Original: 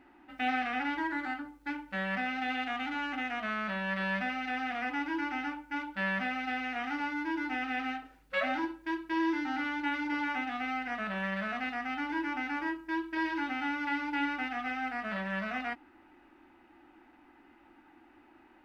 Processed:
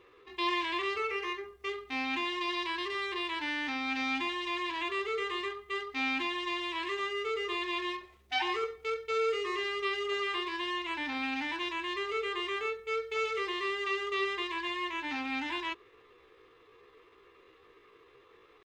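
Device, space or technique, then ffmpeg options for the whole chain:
chipmunk voice: -af "asetrate=60591,aresample=44100,atempo=0.727827"

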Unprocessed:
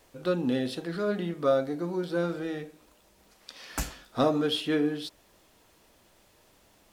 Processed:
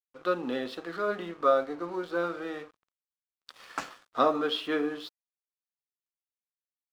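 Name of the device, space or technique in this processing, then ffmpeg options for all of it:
pocket radio on a weak battery: -af "highpass=340,lowpass=4200,aeval=exprs='sgn(val(0))*max(abs(val(0))-0.00224,0)':channel_layout=same,equalizer=frequency=1200:width_type=o:width=0.53:gain=8.5"

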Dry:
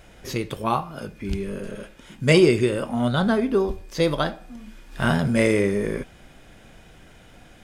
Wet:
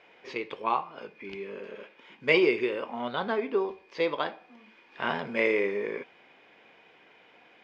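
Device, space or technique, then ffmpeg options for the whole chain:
phone earpiece: -af "highpass=420,equalizer=frequency=440:width_type=q:width=4:gain=4,equalizer=frequency=620:width_type=q:width=4:gain=-4,equalizer=frequency=980:width_type=q:width=4:gain=5,equalizer=frequency=1400:width_type=q:width=4:gain=-4,equalizer=frequency=2300:width_type=q:width=4:gain=6,equalizer=frequency=3800:width_type=q:width=4:gain=-4,lowpass=frequency=4100:width=0.5412,lowpass=frequency=4100:width=1.3066,volume=-4.5dB"

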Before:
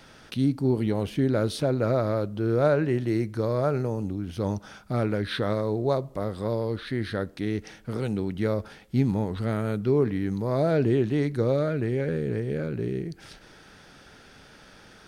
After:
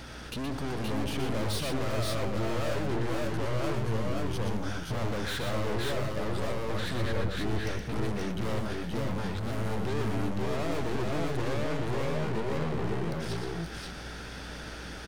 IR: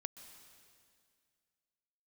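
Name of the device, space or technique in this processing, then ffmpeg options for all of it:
valve amplifier with mains hum: -filter_complex "[0:a]aeval=exprs='(tanh(112*val(0)+0.4)-tanh(0.4))/112':channel_layout=same,aeval=exprs='val(0)+0.002*(sin(2*PI*60*n/s)+sin(2*PI*2*60*n/s)/2+sin(2*PI*3*60*n/s)/3+sin(2*PI*4*60*n/s)/4+sin(2*PI*5*60*n/s)/5)':channel_layout=same,asettb=1/sr,asplit=3[link_01][link_02][link_03];[link_01]atrim=end=7.014[link_04];[link_02]atrim=start=7.01:end=7.51,asetpts=PTS-STARTPTS,afade=type=in:duration=0.004:curve=qsin,afade=type=out:start_time=0.496:duration=0.004:curve=qsin,bass=frequency=250:gain=5,treble=frequency=4000:gain=-9[link_05];[link_03]atrim=start=7.506[link_06];[link_04][link_05]acrossfade=duration=0.004:curve1=hsin:curve2=qsin[link_07];[link_07][link_06]acrossfade=duration=0.004:curve1=qsin:curve2=hsin,aecho=1:1:120|522|540:0.501|0.631|0.562,volume=7.5dB"

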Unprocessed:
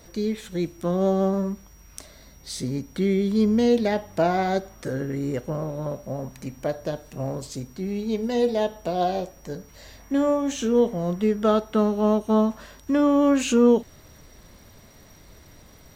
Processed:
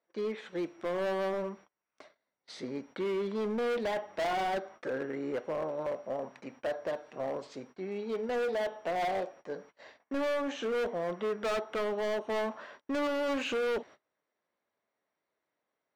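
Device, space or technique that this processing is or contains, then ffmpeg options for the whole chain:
walkie-talkie: -af "highpass=460,lowpass=2300,asoftclip=type=hard:threshold=-29dB,agate=range=-28dB:threshold=-51dB:ratio=16:detection=peak"

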